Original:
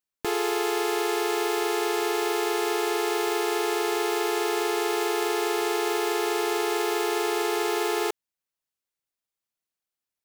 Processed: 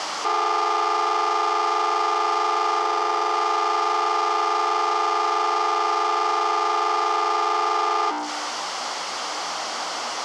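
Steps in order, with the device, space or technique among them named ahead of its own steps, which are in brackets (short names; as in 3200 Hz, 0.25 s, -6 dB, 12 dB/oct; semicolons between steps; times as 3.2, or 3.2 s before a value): 2.81–3.35 air absorption 350 m; notches 60/120/180/240/300 Hz; home computer beeper (infinite clipping; speaker cabinet 660–5200 Hz, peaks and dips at 790 Hz +6 dB, 1200 Hz +4 dB, 1700 Hz -7 dB, 2500 Hz -9 dB, 3800 Hz -9 dB); gain +7 dB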